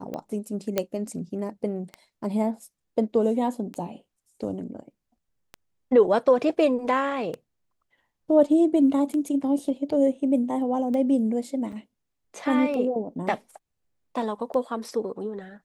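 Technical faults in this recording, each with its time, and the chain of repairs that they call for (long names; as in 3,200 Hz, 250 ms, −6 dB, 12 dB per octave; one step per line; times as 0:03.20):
scratch tick 33 1/3 rpm −21 dBFS
0:00.78: click −9 dBFS
0:11.72–0:11.73: drop-out 5.9 ms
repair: click removal
repair the gap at 0:11.72, 5.9 ms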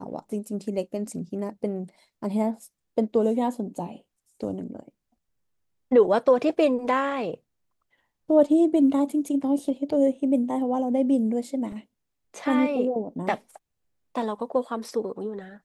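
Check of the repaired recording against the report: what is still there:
none of them is left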